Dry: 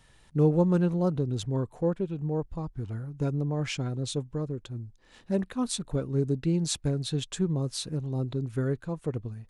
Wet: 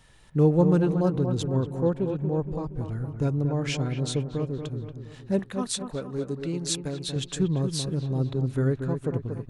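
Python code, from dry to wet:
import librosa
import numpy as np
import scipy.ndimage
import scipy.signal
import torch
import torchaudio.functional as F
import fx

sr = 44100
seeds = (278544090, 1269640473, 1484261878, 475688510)

y = fx.low_shelf(x, sr, hz=330.0, db=-11.0, at=(5.39, 7.16))
y = fx.echo_wet_lowpass(y, sr, ms=234, feedback_pct=48, hz=2100.0, wet_db=-7)
y = y * 10.0 ** (2.5 / 20.0)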